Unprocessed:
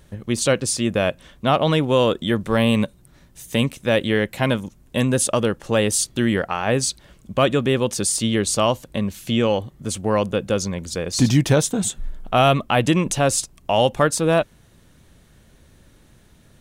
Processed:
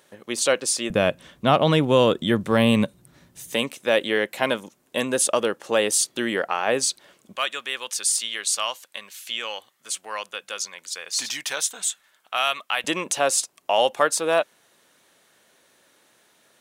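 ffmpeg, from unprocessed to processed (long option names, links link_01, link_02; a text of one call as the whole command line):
ffmpeg -i in.wav -af "asetnsamples=nb_out_samples=441:pad=0,asendcmd='0.9 highpass f 110;3.54 highpass f 380;7.36 highpass f 1400;12.84 highpass f 530',highpass=440" out.wav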